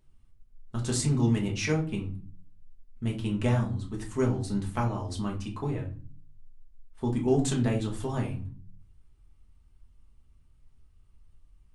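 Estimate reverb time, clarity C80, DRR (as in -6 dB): not exponential, 16.0 dB, -1.5 dB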